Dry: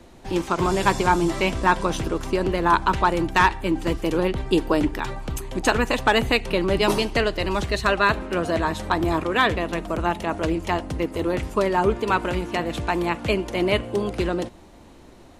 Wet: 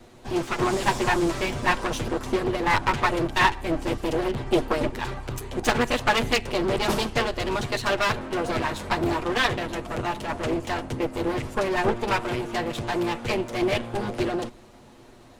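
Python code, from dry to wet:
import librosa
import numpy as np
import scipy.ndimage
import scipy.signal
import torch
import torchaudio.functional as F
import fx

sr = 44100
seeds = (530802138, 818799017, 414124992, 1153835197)

y = fx.lower_of_two(x, sr, delay_ms=8.3)
y = fx.doppler_dist(y, sr, depth_ms=0.2)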